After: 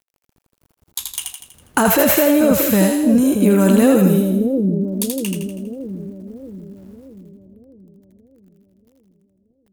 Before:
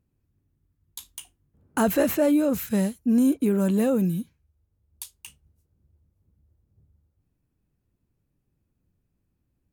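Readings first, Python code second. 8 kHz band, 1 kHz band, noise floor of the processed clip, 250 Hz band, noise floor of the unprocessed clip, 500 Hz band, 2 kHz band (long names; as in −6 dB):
+14.0 dB, +10.5 dB, −70 dBFS, +8.5 dB, −76 dBFS, +9.5 dB, +12.5 dB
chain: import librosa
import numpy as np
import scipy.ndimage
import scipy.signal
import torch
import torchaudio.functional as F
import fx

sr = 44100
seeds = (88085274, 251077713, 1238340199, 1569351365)

p1 = fx.low_shelf(x, sr, hz=430.0, db=-5.5)
p2 = fx.over_compress(p1, sr, threshold_db=-26.0, ratio=-0.5)
p3 = p1 + (p2 * 10.0 ** (2.0 / 20.0))
p4 = fx.quant_dither(p3, sr, seeds[0], bits=10, dither='none')
p5 = fx.echo_split(p4, sr, split_hz=520.0, low_ms=631, high_ms=81, feedback_pct=52, wet_db=-4)
y = p5 * 10.0 ** (5.0 / 20.0)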